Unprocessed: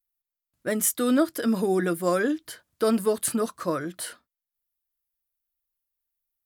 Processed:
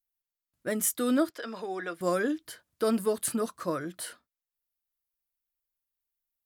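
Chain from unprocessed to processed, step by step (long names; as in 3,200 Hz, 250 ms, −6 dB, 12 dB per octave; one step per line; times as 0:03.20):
0:01.30–0:02.01: three-way crossover with the lows and the highs turned down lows −17 dB, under 490 Hz, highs −22 dB, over 5,900 Hz
level −4 dB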